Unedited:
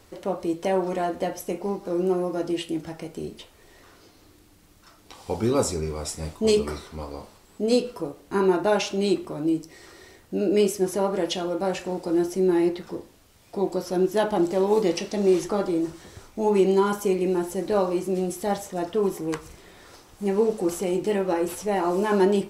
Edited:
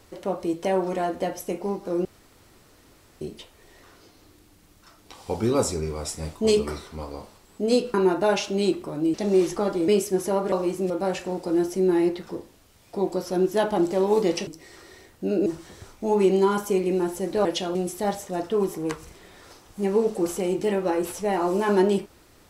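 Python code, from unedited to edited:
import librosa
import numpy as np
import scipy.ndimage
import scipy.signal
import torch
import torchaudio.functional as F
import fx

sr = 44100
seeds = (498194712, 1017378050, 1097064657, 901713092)

y = fx.edit(x, sr, fx.room_tone_fill(start_s=2.05, length_s=1.16),
    fx.cut(start_s=7.94, length_s=0.43),
    fx.swap(start_s=9.57, length_s=0.99, other_s=15.07, other_length_s=0.74),
    fx.swap(start_s=11.2, length_s=0.3, other_s=17.8, other_length_s=0.38), tone=tone)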